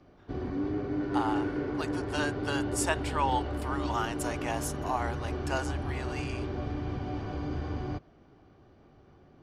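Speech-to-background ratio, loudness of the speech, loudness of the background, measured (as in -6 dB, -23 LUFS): -1.0 dB, -35.0 LUFS, -34.0 LUFS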